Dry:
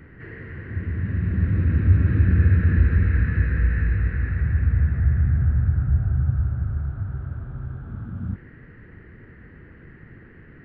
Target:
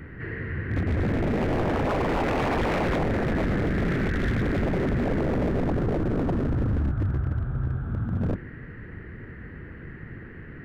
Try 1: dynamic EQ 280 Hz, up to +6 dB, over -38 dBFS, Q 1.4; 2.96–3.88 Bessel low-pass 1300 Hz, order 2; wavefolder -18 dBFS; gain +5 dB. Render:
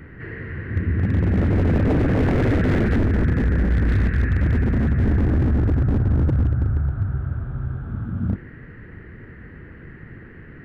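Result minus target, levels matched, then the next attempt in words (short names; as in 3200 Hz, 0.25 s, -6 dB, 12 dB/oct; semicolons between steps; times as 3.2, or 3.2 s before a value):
wavefolder: distortion -18 dB
dynamic EQ 280 Hz, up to +6 dB, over -38 dBFS, Q 1.4; 2.96–3.88 Bessel low-pass 1300 Hz, order 2; wavefolder -24.5 dBFS; gain +5 dB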